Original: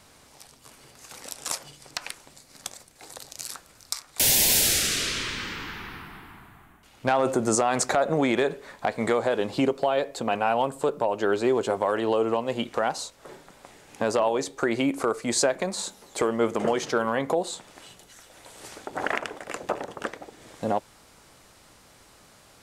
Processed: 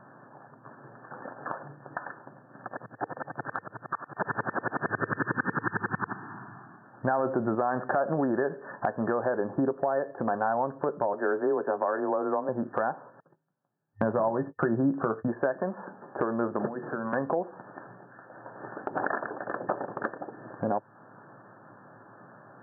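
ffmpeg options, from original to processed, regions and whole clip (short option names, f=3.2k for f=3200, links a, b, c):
-filter_complex "[0:a]asettb=1/sr,asplit=3[a][b][c];[a]atrim=end=2.684[d];[b]atrim=start=2.68:end=6.13,asetpts=PTS-STARTPTS,afade=t=in:d=0.004:c=qsin,afade=t=out:st=3.446:d=0.004:c=qsin,aeval=exprs='0.376*sin(PI/2*6.31*val(0)/0.376)':c=same,aeval=exprs='val(0)*pow(10,-38*if(lt(mod(-11*n/s,1),2*abs(-11)/1000),1-mod(-11*n/s,1)/(2*abs(-11)/1000),(mod(-11*n/s,1)-2*abs(-11)/1000)/(1-2*abs(-11)/1000))/20)':c=same[e];[c]atrim=start=6.126[f];[d][e]acrossfade=d=0.004:c1=hsin:c2=qsin[g];[g][f]acrossfade=d=0.004:c1=qsin:c2=hsin,asettb=1/sr,asplit=3[h][i][j];[h]atrim=end=11.134[k];[i]atrim=start=11.13:end=12.49,asetpts=PTS-STARTPTS,afade=t=in:d=0.004:c=qsin,afade=t=out:st=1.356:d=0.004:c=qsin,highpass=200,afreqshift=19[l];[j]atrim=start=12.486[m];[k][l]acrossfade=d=0.004:c1=hsin:c2=qsin[n];[n][m]acrossfade=d=0.004:c1=qsin:c2=hsin,asettb=1/sr,asplit=3[o][p][q];[o]atrim=end=13.204[r];[p]atrim=start=13.2:end=15.28,asetpts=PTS-STARTPTS,afade=t=in:d=0.004:c=qsin,afade=t=out:st=2.076:d=0.004:c=qsin,agate=range=-39dB:threshold=-40dB:ratio=16:release=100:detection=peak,equalizer=f=150:t=o:w=0.84:g=13,asplit=2[s][t];[t]adelay=18,volume=-10.5dB[u];[s][u]amix=inputs=2:normalize=0,atrim=end_sample=91728[v];[q]atrim=start=15.276[w];[r][v]acrossfade=d=0.004:c1=hsin:c2=qsin[x];[x][w]acrossfade=d=0.004:c1=qsin:c2=hsin,asettb=1/sr,asplit=3[y][z][aa];[y]atrim=end=16.664[ab];[z]atrim=start=16.66:end=17.13,asetpts=PTS-STARTPTS,afade=t=in:d=0.004:c=qsin,afade=t=out:st=0.466:d=0.004:c=qsin,equalizer=f=67:w=1.1:g=-11.5,bandreject=f=60:t=h:w=6,bandreject=f=120:t=h:w=6,bandreject=f=180:t=h:w=6,bandreject=f=240:t=h:w=6,bandreject=f=300:t=h:w=6,bandreject=f=360:t=h:w=6,bandreject=f=420:t=h:w=6,bandreject=f=480:t=h:w=6,bandreject=f=540:t=h:w=6,acrossover=split=240|3000[ac][ad][ae];[ad]acompressor=threshold=-35dB:ratio=6:attack=3.2:release=140:knee=2.83:detection=peak[af];[ac][af][ae]amix=inputs=3:normalize=0[ag];[aa]atrim=start=17.126[ah];[ab][ag]acrossfade=d=0.004:c1=hsin:c2=qsin[ai];[ai][ah]acrossfade=d=0.004:c1=qsin:c2=hsin,afftfilt=real='re*between(b*sr/4096,100,1800)':imag='im*between(b*sr/4096,100,1800)':win_size=4096:overlap=0.75,bandreject=f=460:w=12,acompressor=threshold=-37dB:ratio=2,volume=6dB"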